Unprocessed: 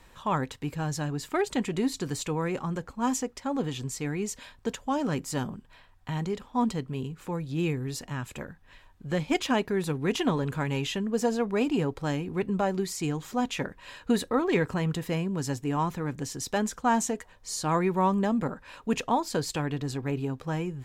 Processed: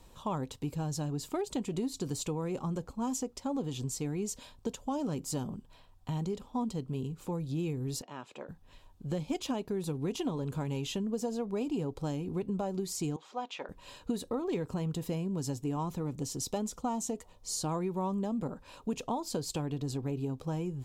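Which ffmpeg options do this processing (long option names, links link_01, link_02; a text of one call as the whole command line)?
ffmpeg -i in.wav -filter_complex "[0:a]asettb=1/sr,asplit=3[link_01][link_02][link_03];[link_01]atrim=end=8.024[link_04];[link_02]atrim=start=8.02:end=8.49,asetpts=PTS-STARTPTS,afade=type=in:duration=0.004:curve=qsin,afade=type=out:start_time=0.466:duration=0.004:curve=qsin,highpass=410,lowpass=3600[link_05];[link_03]atrim=start=8.486[link_06];[link_04][link_05]acrossfade=duration=0.004:curve1=hsin:curve2=qsin[link_07];[link_07][link_06]acrossfade=duration=0.004:curve1=qsin:curve2=hsin,asettb=1/sr,asplit=3[link_08][link_09][link_10];[link_08]atrim=end=13.164[link_11];[link_09]atrim=start=13.16:end=13.69,asetpts=PTS-STARTPTS,afade=type=in:duration=0.004:curve=qsin,afade=type=out:start_time=0.526:duration=0.004:curve=qsin,highpass=670,lowpass=3200[link_12];[link_10]atrim=start=13.686[link_13];[link_11][link_12]acrossfade=duration=0.004:curve1=hsin:curve2=qsin[link_14];[link_14][link_13]acrossfade=duration=0.004:curve1=qsin:curve2=hsin,asettb=1/sr,asplit=3[link_15][link_16][link_17];[link_15]atrim=end=16.004[link_18];[link_16]atrim=start=16:end=17.51,asetpts=PTS-STARTPTS,afade=type=in:duration=0.004:curve=qsin,afade=type=out:start_time=1.506:duration=0.004:curve=qsin,asuperstop=centerf=1600:order=4:qfactor=7.8[link_19];[link_17]atrim=start=17.506[link_20];[link_18][link_19]acrossfade=duration=0.004:curve1=hsin:curve2=qsin[link_21];[link_21][link_20]acrossfade=duration=0.004:curve1=qsin:curve2=hsin,equalizer=frequency=1800:width=1.3:gain=-13.5,acompressor=threshold=-30dB:ratio=6" out.wav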